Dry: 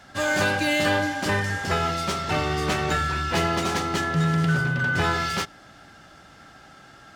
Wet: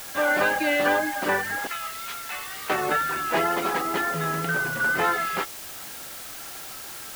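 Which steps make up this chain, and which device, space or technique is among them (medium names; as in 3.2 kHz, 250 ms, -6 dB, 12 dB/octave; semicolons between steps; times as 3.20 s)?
1.67–2.70 s: Bessel high-pass 2.4 kHz, order 2; reverb removal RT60 0.55 s; wax cylinder (band-pass 340–2200 Hz; wow and flutter; white noise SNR 12 dB); trim +3.5 dB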